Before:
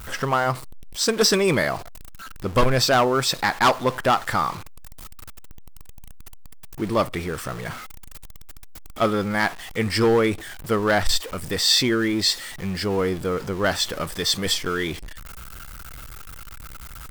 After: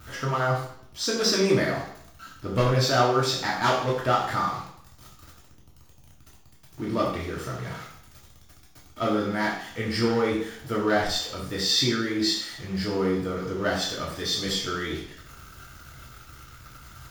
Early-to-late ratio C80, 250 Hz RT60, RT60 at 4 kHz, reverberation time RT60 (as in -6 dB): 7.5 dB, 0.65 s, 0.65 s, 0.65 s